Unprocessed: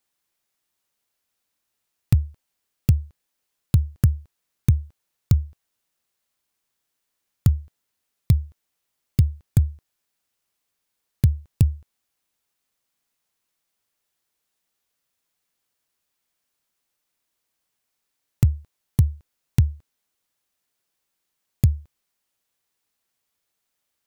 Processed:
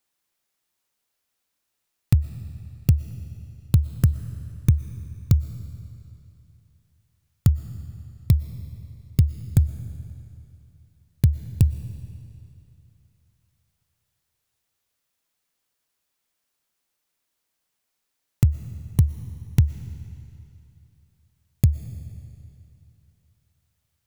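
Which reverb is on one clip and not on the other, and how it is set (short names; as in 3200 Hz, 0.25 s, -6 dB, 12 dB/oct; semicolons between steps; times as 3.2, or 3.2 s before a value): digital reverb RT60 2.8 s, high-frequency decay 0.95×, pre-delay 80 ms, DRR 12.5 dB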